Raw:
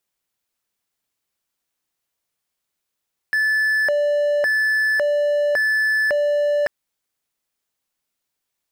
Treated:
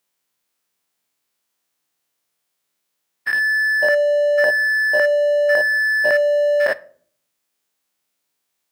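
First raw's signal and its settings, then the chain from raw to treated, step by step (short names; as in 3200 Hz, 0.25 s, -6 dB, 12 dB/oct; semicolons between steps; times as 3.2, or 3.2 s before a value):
siren hi-lo 585–1740 Hz 0.9/s triangle -14 dBFS 3.34 s
spectral dilation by 0.12 s; HPF 140 Hz 12 dB/oct; shoebox room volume 630 m³, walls furnished, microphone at 0.36 m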